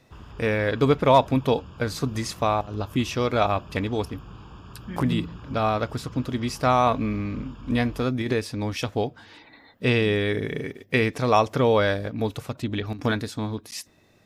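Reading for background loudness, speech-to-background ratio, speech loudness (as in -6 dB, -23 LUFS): -44.0 LUFS, 19.0 dB, -25.0 LUFS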